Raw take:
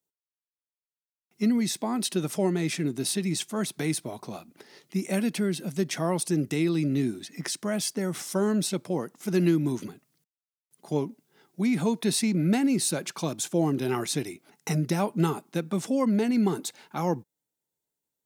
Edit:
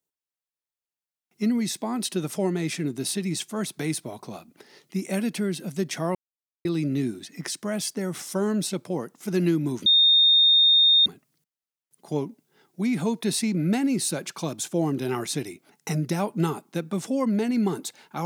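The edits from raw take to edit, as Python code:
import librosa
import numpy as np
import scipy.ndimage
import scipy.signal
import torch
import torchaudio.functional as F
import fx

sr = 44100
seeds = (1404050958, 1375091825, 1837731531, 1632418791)

y = fx.edit(x, sr, fx.silence(start_s=6.15, length_s=0.5),
    fx.insert_tone(at_s=9.86, length_s=1.2, hz=3670.0, db=-14.0), tone=tone)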